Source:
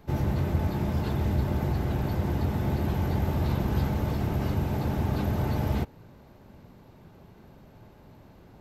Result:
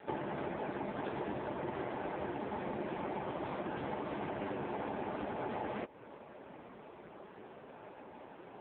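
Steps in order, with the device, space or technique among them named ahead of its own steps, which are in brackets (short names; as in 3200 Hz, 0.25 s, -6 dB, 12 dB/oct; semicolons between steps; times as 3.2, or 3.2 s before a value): voicemail (BPF 380–3100 Hz; compressor 10:1, threshold -42 dBFS, peak gain reduction 10.5 dB; gain +9.5 dB; AMR-NB 5.15 kbps 8000 Hz)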